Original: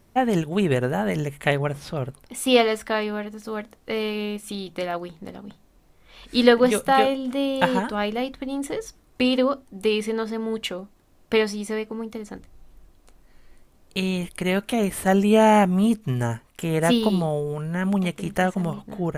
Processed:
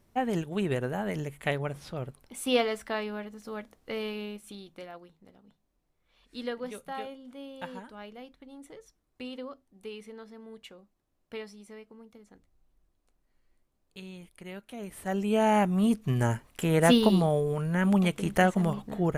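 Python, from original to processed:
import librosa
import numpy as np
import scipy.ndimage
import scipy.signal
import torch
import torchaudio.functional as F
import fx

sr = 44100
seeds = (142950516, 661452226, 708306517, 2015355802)

y = fx.gain(x, sr, db=fx.line((4.1, -8.0), (5.17, -19.5), (14.7, -19.5), (15.24, -10.0), (16.31, -1.0)))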